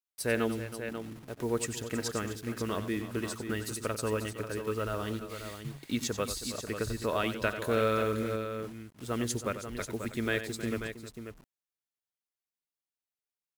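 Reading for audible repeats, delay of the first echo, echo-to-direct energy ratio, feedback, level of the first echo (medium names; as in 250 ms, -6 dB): 3, 92 ms, -6.0 dB, no regular repeats, -11.0 dB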